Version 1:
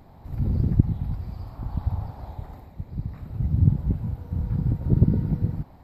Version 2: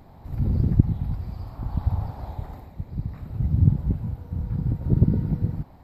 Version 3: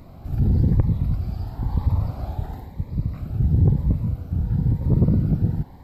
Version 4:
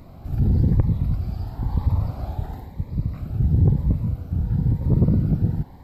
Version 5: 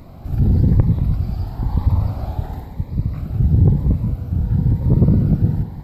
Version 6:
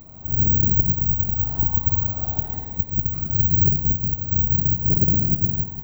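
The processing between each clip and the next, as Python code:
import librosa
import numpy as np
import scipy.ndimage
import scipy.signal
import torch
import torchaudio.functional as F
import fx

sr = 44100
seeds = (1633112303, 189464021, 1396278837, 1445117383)

y1 = fx.rider(x, sr, range_db=4, speed_s=2.0)
y1 = y1 * librosa.db_to_amplitude(-1.0)
y2 = 10.0 ** (-16.5 / 20.0) * np.tanh(y1 / 10.0 ** (-16.5 / 20.0))
y2 = fx.notch_cascade(y2, sr, direction='rising', hz=0.99)
y2 = y2 * librosa.db_to_amplitude(6.0)
y3 = y2
y4 = y3 + 10.0 ** (-11.5 / 20.0) * np.pad(y3, (int(187 * sr / 1000.0), 0))[:len(y3)]
y4 = y4 * librosa.db_to_amplitude(4.0)
y5 = fx.recorder_agc(y4, sr, target_db=-7.0, rise_db_per_s=12.0, max_gain_db=30)
y5 = (np.kron(y5[::2], np.eye(2)[0]) * 2)[:len(y5)]
y5 = y5 * librosa.db_to_amplitude(-8.5)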